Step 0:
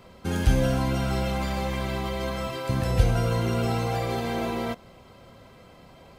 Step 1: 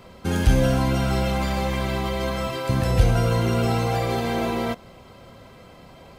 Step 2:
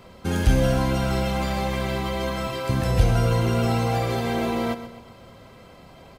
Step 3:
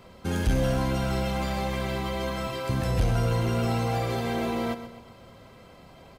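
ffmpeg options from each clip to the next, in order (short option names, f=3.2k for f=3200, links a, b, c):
-af "acontrast=51,volume=-2dB"
-af "aecho=1:1:128|256|384|512:0.224|0.0963|0.0414|0.0178,volume=-1dB"
-af "asoftclip=type=tanh:threshold=-13dB,volume=-3dB"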